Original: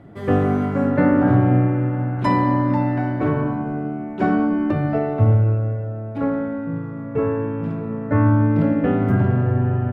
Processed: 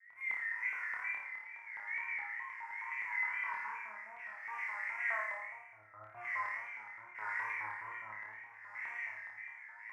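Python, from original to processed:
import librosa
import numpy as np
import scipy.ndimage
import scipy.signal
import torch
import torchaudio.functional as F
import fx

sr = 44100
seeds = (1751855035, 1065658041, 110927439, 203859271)

y = np.minimum(x, 2.0 * 10.0 ** (-19.0 / 20.0) - x)
y = fx.curve_eq(y, sr, hz=(110.0, 200.0, 300.0, 580.0, 940.0, 2200.0, 3600.0, 5200.0), db=(0, -18, -13, -23, -4, 14, -29, 0))
y = fx.over_compress(y, sr, threshold_db=-28.0, ratio=-0.5)
y = fx.peak_eq(y, sr, hz=1200.0, db=-13.0, octaves=0.24)
y = fx.comb_fb(y, sr, f0_hz=110.0, decay_s=1.3, harmonics='all', damping=0.0, mix_pct=100)
y = fx.rev_freeverb(y, sr, rt60_s=0.63, hf_ratio=0.45, predelay_ms=30, drr_db=-1.5)
y = fx.wow_flutter(y, sr, seeds[0], rate_hz=2.1, depth_cents=130.0)
y = fx.filter_lfo_highpass(y, sr, shape='square', hz=4.8, low_hz=970.0, high_hz=2000.0, q=4.9)
y = fx.room_flutter(y, sr, wall_m=4.8, rt60_s=0.58)
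y = y * librosa.db_to_amplitude(-5.5)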